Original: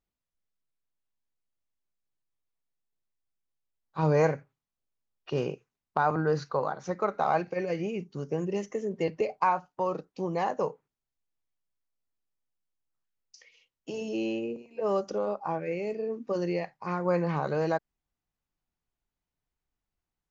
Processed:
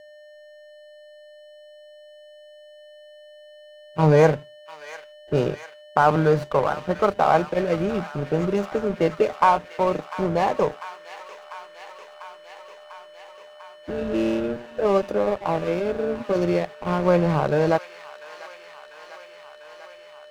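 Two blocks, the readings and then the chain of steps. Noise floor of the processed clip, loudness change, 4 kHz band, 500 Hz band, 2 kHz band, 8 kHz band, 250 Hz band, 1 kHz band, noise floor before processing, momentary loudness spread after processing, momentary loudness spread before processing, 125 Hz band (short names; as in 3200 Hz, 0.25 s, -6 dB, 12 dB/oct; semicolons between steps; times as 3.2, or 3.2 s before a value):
-47 dBFS, +8.0 dB, +9.5 dB, +8.0 dB, +8.0 dB, n/a, +8.0 dB, +7.5 dB, under -85 dBFS, 22 LU, 8 LU, +8.5 dB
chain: low-pass opened by the level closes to 420 Hz, open at -25 dBFS; whine 600 Hz -36 dBFS; backlash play -31 dBFS; on a send: thin delay 0.696 s, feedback 76%, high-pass 1500 Hz, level -9.5 dB; on the sum: gain +8.5 dB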